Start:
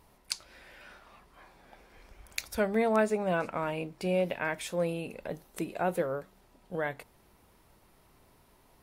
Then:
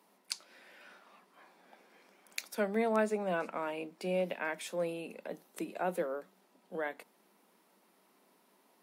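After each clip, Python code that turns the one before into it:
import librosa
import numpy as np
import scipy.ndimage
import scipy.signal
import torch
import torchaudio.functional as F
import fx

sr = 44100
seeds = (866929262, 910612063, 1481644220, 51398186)

y = scipy.signal.sosfilt(scipy.signal.butter(12, 180.0, 'highpass', fs=sr, output='sos'), x)
y = F.gain(torch.from_numpy(y), -4.0).numpy()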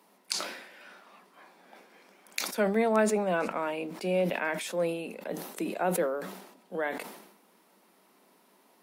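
y = fx.sustainer(x, sr, db_per_s=63.0)
y = F.gain(torch.from_numpy(y), 5.0).numpy()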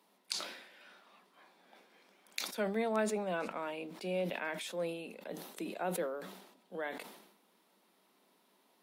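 y = fx.peak_eq(x, sr, hz=3600.0, db=6.0, octaves=0.63)
y = F.gain(torch.from_numpy(y), -8.0).numpy()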